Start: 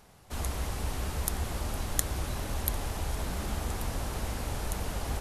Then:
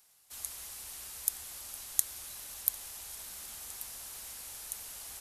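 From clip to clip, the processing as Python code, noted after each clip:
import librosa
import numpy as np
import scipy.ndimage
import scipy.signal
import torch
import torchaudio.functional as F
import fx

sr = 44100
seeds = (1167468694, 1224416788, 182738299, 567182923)

y = F.preemphasis(torch.from_numpy(x), 0.97).numpy()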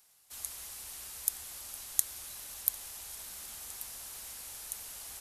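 y = x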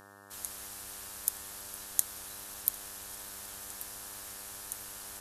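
y = fx.dmg_buzz(x, sr, base_hz=100.0, harmonics=18, level_db=-55.0, tilt_db=0, odd_only=False)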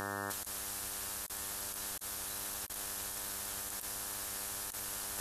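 y = fx.over_compress(x, sr, threshold_db=-51.0, ratio=-1.0)
y = y * librosa.db_to_amplitude(8.0)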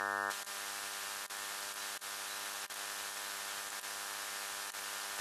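y = fx.bandpass_q(x, sr, hz=2000.0, q=0.59)
y = fx.echo_feedback(y, sr, ms=285, feedback_pct=59, wet_db=-22.5)
y = y * librosa.db_to_amplitude(5.5)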